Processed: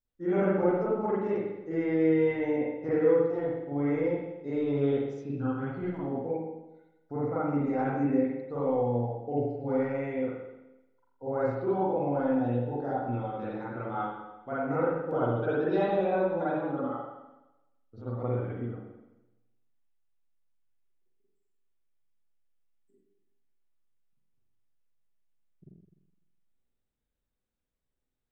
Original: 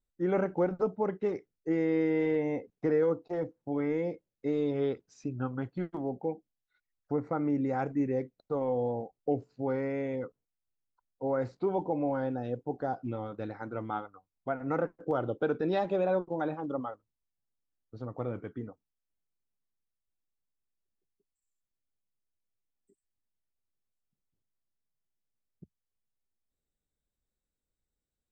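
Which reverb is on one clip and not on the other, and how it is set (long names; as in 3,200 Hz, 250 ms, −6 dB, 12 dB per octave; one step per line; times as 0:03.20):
spring reverb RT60 1 s, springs 42/50 ms, chirp 70 ms, DRR −9.5 dB
level −7 dB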